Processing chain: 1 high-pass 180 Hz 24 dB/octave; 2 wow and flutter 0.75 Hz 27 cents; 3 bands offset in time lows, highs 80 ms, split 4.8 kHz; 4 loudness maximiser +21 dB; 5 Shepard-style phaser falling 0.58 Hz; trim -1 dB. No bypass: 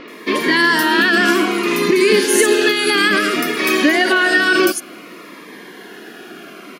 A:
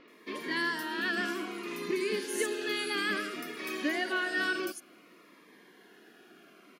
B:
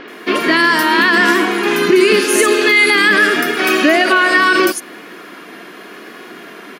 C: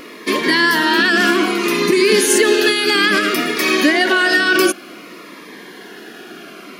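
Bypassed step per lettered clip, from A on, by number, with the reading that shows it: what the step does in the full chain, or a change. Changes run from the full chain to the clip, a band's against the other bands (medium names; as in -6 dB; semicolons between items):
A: 4, crest factor change +1.5 dB; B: 5, 1 kHz band +3.0 dB; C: 3, 4 kHz band +1.5 dB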